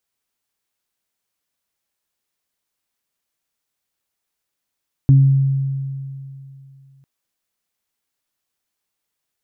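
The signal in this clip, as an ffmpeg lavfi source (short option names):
-f lavfi -i "aevalsrc='0.501*pow(10,-3*t/2.74)*sin(2*PI*136*t)+0.126*pow(10,-3*t/0.54)*sin(2*PI*272*t)':d=1.95:s=44100"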